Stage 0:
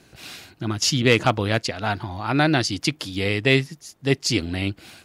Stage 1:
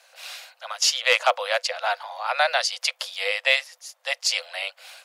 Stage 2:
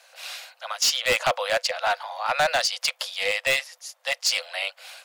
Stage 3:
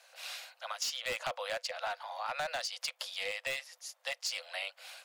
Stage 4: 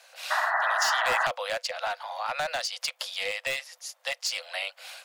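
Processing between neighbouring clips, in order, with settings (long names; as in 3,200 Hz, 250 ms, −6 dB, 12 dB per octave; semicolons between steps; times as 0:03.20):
Chebyshev high-pass filter 500 Hz, order 10; level +1.5 dB
gain into a clipping stage and back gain 17.5 dB; level +1.5 dB
downward compressor 4 to 1, threshold −28 dBFS, peak gain reduction 8.5 dB; level −6.5 dB
sound drawn into the spectrogram noise, 0:00.30–0:01.27, 610–2,000 Hz −32 dBFS; level +6 dB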